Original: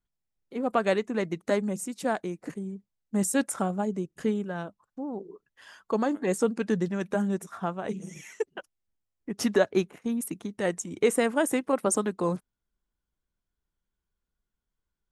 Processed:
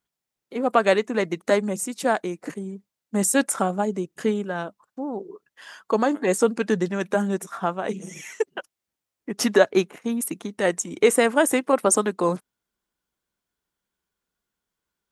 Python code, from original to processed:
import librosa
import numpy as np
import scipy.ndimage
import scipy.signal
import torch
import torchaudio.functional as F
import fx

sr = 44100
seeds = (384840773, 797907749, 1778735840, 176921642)

y = fx.highpass(x, sr, hz=310.0, slope=6)
y = y * 10.0 ** (7.5 / 20.0)